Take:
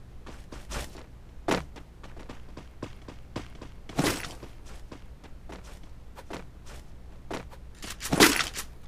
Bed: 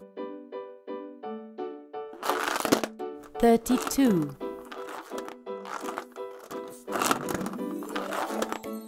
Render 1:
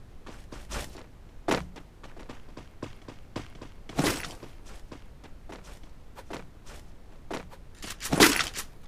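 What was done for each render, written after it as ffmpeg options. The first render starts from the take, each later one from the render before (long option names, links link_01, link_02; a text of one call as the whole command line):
ffmpeg -i in.wav -af "bandreject=frequency=60:width_type=h:width=4,bandreject=frequency=120:width_type=h:width=4,bandreject=frequency=180:width_type=h:width=4" out.wav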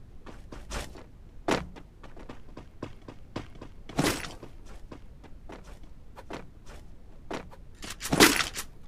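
ffmpeg -i in.wav -af "afftdn=noise_reduction=6:noise_floor=-51" out.wav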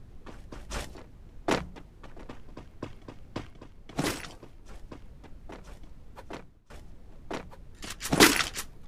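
ffmpeg -i in.wav -filter_complex "[0:a]asplit=4[link_01][link_02][link_03][link_04];[link_01]atrim=end=3.502[link_05];[link_02]atrim=start=3.498:end=4.682,asetpts=PTS-STARTPTS,volume=-3.5dB[link_06];[link_03]atrim=start=4.678:end=6.7,asetpts=PTS-STARTPTS,afade=type=out:start_time=1.582:duration=0.44:silence=0.0841395[link_07];[link_04]atrim=start=6.7,asetpts=PTS-STARTPTS,afade=type=in:duration=0.004:curve=hsin:silence=0.0841395[link_08];[link_05][link_06]acrossfade=duration=0.004:curve1=hsin:curve2=hsin[link_09];[link_07][link_08]concat=n=2:v=0:a=1[link_10];[link_09][link_10]acrossfade=duration=0.004:curve1=hsin:curve2=hsin" out.wav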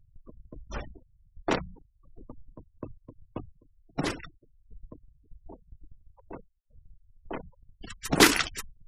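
ffmpeg -i in.wav -af "afftfilt=real='re*gte(hypot(re,im),0.02)':imag='im*gte(hypot(re,im),0.02)':win_size=1024:overlap=0.75,agate=range=-11dB:threshold=-43dB:ratio=16:detection=peak" out.wav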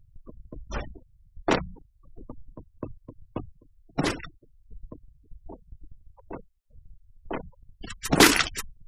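ffmpeg -i in.wav -af "volume=4dB,alimiter=limit=-3dB:level=0:latency=1" out.wav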